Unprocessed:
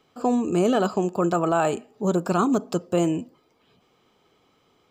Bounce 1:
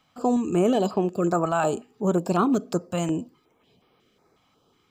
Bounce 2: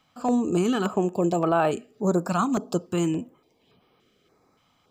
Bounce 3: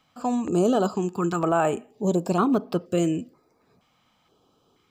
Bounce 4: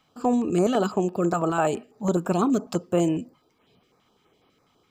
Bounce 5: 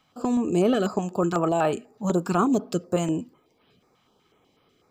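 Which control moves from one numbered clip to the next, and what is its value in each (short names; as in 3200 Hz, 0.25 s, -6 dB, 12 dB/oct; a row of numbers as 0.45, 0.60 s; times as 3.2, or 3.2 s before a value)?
stepped notch, rate: 5.5, 3.5, 2.1, 12, 8.1 Hz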